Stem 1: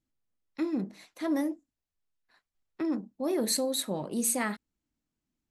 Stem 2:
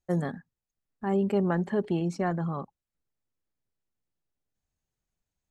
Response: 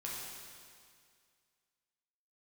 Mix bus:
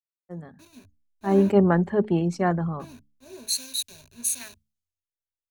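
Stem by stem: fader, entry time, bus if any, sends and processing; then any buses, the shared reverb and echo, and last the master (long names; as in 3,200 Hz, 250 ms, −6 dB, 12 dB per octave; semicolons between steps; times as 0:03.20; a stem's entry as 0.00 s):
−7.5 dB, 0.00 s, no send, hold until the input has moved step −31.5 dBFS; EQ curve with evenly spaced ripples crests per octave 1.5, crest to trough 12 dB
−5.0 dB, 0.20 s, no send, automatic gain control gain up to 9 dB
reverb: not used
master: parametric band 87 Hz +14.5 dB 0.25 octaves; hum removal 71.8 Hz, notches 4; multiband upward and downward expander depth 100%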